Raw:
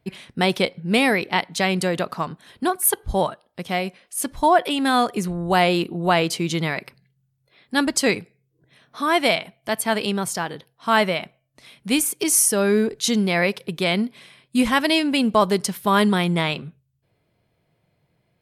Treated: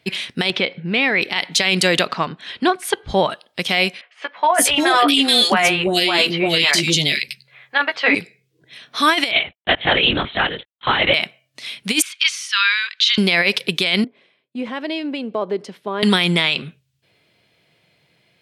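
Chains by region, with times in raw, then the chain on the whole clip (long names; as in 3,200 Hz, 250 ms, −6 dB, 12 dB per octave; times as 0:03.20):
0:00.50–0:01.22: low-pass filter 2,500 Hz + downward compressor 4 to 1, threshold −24 dBFS
0:02.08–0:03.30: head-to-tape spacing loss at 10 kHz 22 dB + one half of a high-frequency compander encoder only
0:04.01–0:08.15: double-tracking delay 14 ms −5 dB + three-band delay without the direct sound mids, lows, highs 350/430 ms, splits 510/2,400 Hz
0:09.31–0:11.14: noise gate −48 dBFS, range −48 dB + linear-prediction vocoder at 8 kHz whisper
0:12.02–0:13.18: inverse Chebyshev high-pass filter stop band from 270 Hz, stop band 70 dB + downward compressor 3 to 1, threshold −26 dBFS + drawn EQ curve 140 Hz 0 dB, 480 Hz −9 dB, 700 Hz −26 dB, 1,000 Hz +4 dB, 1,800 Hz +2 dB, 3,700 Hz +3 dB, 7,500 Hz −17 dB, 12,000 Hz −27 dB
0:14.04–0:16.03: downward compressor 2.5 to 1, threshold −25 dBFS + resonant band-pass 440 Hz, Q 1.2 + multiband upward and downward expander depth 70%
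whole clip: meter weighting curve D; compressor whose output falls as the input rises −17 dBFS, ratio −0.5; brickwall limiter −9.5 dBFS; level +5 dB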